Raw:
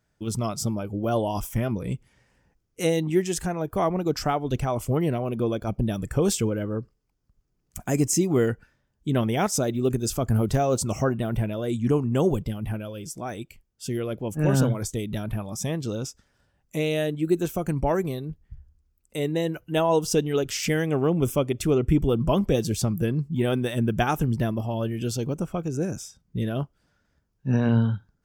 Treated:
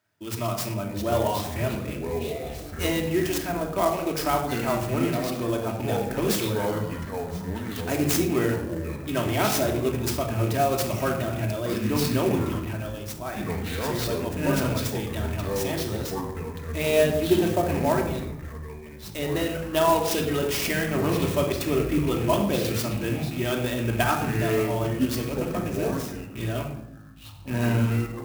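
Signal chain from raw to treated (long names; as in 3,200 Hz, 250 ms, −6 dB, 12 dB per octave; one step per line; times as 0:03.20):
loose part that buzzes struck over −28 dBFS, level −33 dBFS
meter weighting curve A
gain on a spectral selection 0:16.84–0:17.75, 360–980 Hz +7 dB
parametric band 90 Hz +14 dB 1 octave
convolution reverb RT60 0.75 s, pre-delay 3 ms, DRR 1 dB
delay with pitch and tempo change per echo 525 ms, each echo −6 semitones, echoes 3, each echo −6 dB
hum removal 61.04 Hz, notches 29
converter with an unsteady clock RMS 0.032 ms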